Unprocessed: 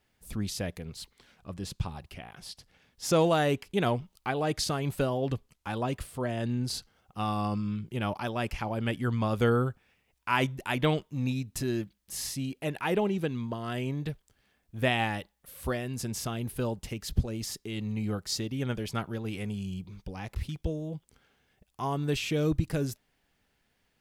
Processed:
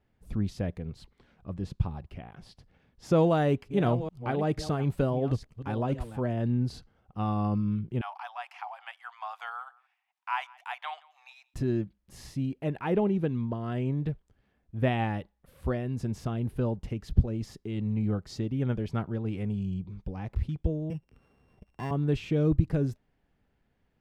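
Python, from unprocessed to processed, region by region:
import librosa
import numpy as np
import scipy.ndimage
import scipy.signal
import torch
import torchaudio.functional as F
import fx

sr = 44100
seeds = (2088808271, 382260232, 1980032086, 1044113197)

y = fx.chain(x, sr, fx.reverse_delay(ms=460, wet_db=-12.5),
    fx.high_shelf(hz=4600.0, db=5.5), at=(3.17, 6.33))
y = fx.chain(y, sr, fx.cheby1_highpass(hz=730.0, order=6),
    fx.echo_single(ms=173, db=-23.5), at=(8.01, 11.54))
y = fx.chain(y, sr, fx.sample_sort(block=16),
    fx.band_squash(depth_pct=40), at=(20.9, 21.91))
y = fx.lowpass(y, sr, hz=1100.0, slope=6)
y = fx.low_shelf(y, sr, hz=290.0, db=5.0)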